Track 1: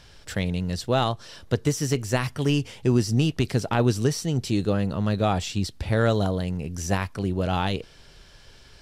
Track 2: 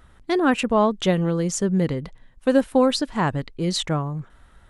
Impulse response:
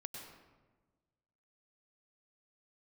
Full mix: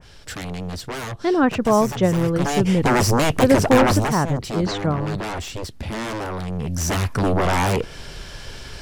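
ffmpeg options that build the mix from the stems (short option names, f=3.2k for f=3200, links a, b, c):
-filter_complex "[0:a]aeval=exprs='0.316*sin(PI/2*6.31*val(0)/0.316)':c=same,adynamicequalizer=threshold=0.0447:dfrequency=2400:dqfactor=0.7:tfrequency=2400:tqfactor=0.7:attack=5:release=100:ratio=0.375:range=2:mode=cutabove:tftype=highshelf,volume=5.5dB,afade=t=in:st=2.2:d=0.75:silence=0.251189,afade=t=out:st=3.93:d=0.26:silence=0.298538,afade=t=in:st=6.48:d=0.78:silence=0.354813[a];[1:a]lowpass=f=5.6k:w=0.5412,lowpass=f=5.6k:w=1.3066,equalizer=f=2.9k:t=o:w=1.3:g=-6.5,adelay=950,volume=2dB[b];[a][b]amix=inputs=2:normalize=0,adynamicequalizer=threshold=0.00708:dfrequency=4100:dqfactor=1.8:tfrequency=4100:tqfactor=1.8:attack=5:release=100:ratio=0.375:range=3:mode=cutabove:tftype=bell"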